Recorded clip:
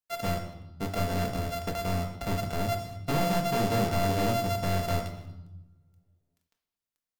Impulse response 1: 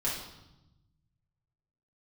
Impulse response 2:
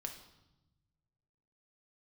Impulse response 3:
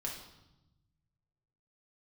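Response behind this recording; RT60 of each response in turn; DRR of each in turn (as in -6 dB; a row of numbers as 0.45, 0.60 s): 2; 0.90, 0.95, 0.95 s; -7.0, 3.0, -2.0 dB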